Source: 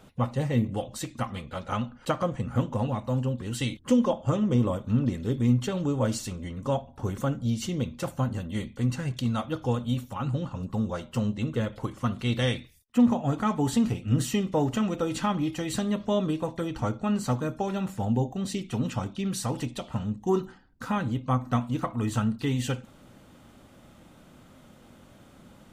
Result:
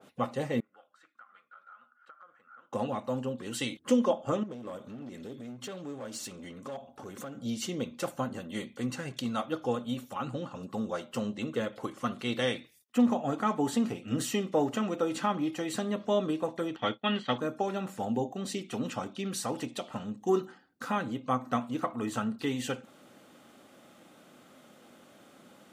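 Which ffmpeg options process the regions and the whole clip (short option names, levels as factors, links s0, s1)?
-filter_complex "[0:a]asettb=1/sr,asplit=3[s0][s1][s2];[s0]atrim=end=0.604[s3];[s1]atrim=start=0.6:end=2.73,asetpts=PTS-STARTPTS,afade=t=in:d=0.004:c=qsin,afade=t=out:st=2.126:d=0.004:c=qsin,bandpass=f=1400:t=q:w=11,acompressor=threshold=0.00398:ratio=10:attack=3.2:release=140:knee=1:detection=peak[s4];[s2]atrim=start=2.726[s5];[s3][s4]acrossfade=d=0.004:c1=hsin:c2=qsin[s6];[s6][s5]acrossfade=d=0.004:c1=qsin:c2=hsin,asettb=1/sr,asplit=3[s7][s8][s9];[s7]atrim=end=4.434[s10];[s8]atrim=start=4.43:end=7.37,asetpts=PTS-STARTPTS,afade=t=in:d=0.004:c=qsin,afade=t=out:st=2.936:d=0.004:c=qsin,acompressor=threshold=0.02:ratio=4:attack=3.2:release=140:knee=1:detection=peak,asoftclip=type=hard:threshold=0.0251[s11];[s9]atrim=start=7.366[s12];[s10][s11]acrossfade=d=0.004:c1=hsin:c2=qsin[s13];[s13][s12]acrossfade=d=0.004:c1=qsin:c2=hsin,asettb=1/sr,asplit=3[s14][s15][s16];[s14]atrim=end=16.764[s17];[s15]atrim=start=16.76:end=17.38,asetpts=PTS-STARTPTS,afade=t=in:d=0.004:c=qsin,afade=t=out:st=0.616:d=0.004:c=qsin,lowpass=f=3300:t=q:w=13,equalizer=f=1900:w=3.5:g=9.5,agate=range=0.0224:threshold=0.0398:ratio=3:release=100:detection=peak[s18];[s16]atrim=start=17.376[s19];[s17][s18]acrossfade=d=0.004:c1=hsin:c2=qsin[s20];[s20][s19]acrossfade=d=0.004:c1=qsin:c2=hsin,highpass=270,bandreject=f=950:w=11,adynamicequalizer=threshold=0.00562:dfrequency=2100:dqfactor=0.7:tfrequency=2100:tqfactor=0.7:attack=5:release=100:ratio=0.375:range=2.5:mode=cutabove:tftype=highshelf"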